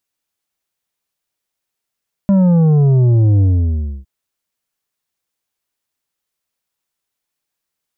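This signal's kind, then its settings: sub drop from 200 Hz, over 1.76 s, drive 7.5 dB, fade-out 0.64 s, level -9 dB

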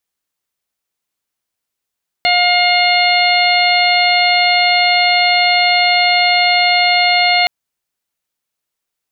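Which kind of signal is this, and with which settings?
steady additive tone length 5.22 s, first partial 712 Hz, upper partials -11.5/0.5/-5/-8.5/-3 dB, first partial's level -14 dB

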